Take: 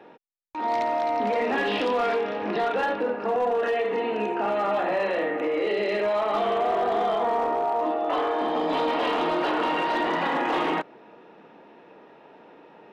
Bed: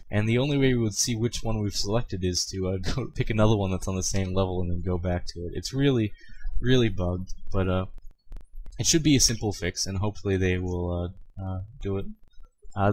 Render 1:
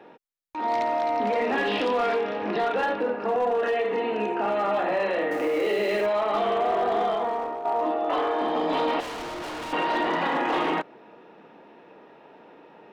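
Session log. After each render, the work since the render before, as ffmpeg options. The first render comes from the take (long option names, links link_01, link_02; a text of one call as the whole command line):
ffmpeg -i in.wav -filter_complex "[0:a]asettb=1/sr,asplit=3[link_01][link_02][link_03];[link_01]atrim=end=5.314[link_04];[link_02]atrim=start=5.31:end=6.06,asetpts=PTS-STARTPTS,afade=type=in:duration=0.004:curve=qsin,afade=type=out:start_time=0.746:duration=0.004:curve=qsin,aeval=exprs='val(0)+0.5*0.0133*sgn(val(0))':channel_layout=same[link_05];[link_03]atrim=start=6.056[link_06];[link_04][link_05]acrossfade=duration=0.004:curve1=hsin:curve2=qsin[link_07];[link_07][link_06]acrossfade=duration=0.004:curve1=qsin:curve2=hsin,asettb=1/sr,asplit=3[link_08][link_09][link_10];[link_08]atrim=end=9.004[link_11];[link_09]atrim=start=9:end=9.73,asetpts=PTS-STARTPTS,afade=type=in:duration=0.004:curve=qsin,afade=type=out:start_time=0.726:duration=0.004:curve=qsin,asoftclip=type=hard:threshold=-33dB[link_12];[link_10]atrim=start=9.726[link_13];[link_11][link_12]acrossfade=duration=0.004:curve1=hsin:curve2=qsin[link_14];[link_14][link_13]acrossfade=duration=0.004:curve1=qsin:curve2=hsin,asplit=2[link_15][link_16];[link_15]atrim=end=7.65,asetpts=PTS-STARTPTS,afade=type=out:start_time=7.02:duration=0.63:silence=0.334965[link_17];[link_16]atrim=start=7.65,asetpts=PTS-STARTPTS,afade=type=in:duration=0.004:curve=hsin:silence=0.334965[link_18];[link_17][link_18]concat=n=2:v=0:a=1" out.wav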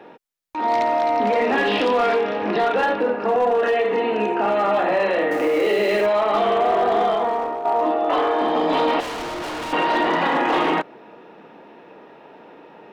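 ffmpeg -i in.wav -af "volume=5.5dB" out.wav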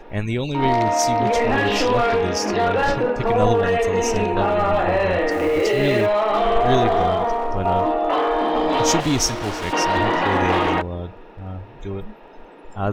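ffmpeg -i in.wav -i bed.wav -filter_complex "[1:a]volume=0dB[link_01];[0:a][link_01]amix=inputs=2:normalize=0" out.wav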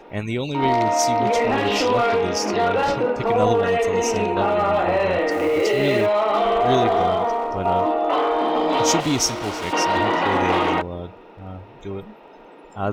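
ffmpeg -i in.wav -af "highpass=frequency=140:poles=1,bandreject=frequency=1700:width=11" out.wav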